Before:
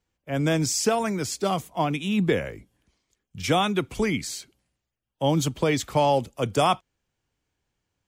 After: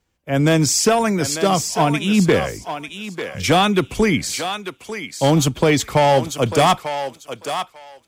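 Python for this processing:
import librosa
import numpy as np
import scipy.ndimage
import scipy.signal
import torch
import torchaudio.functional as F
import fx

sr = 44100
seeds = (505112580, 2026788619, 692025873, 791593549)

y = fx.clip_asym(x, sr, top_db=-18.0, bottom_db=-15.0)
y = fx.echo_thinned(y, sr, ms=895, feedback_pct=19, hz=630.0, wet_db=-7)
y = y * 10.0 ** (8.0 / 20.0)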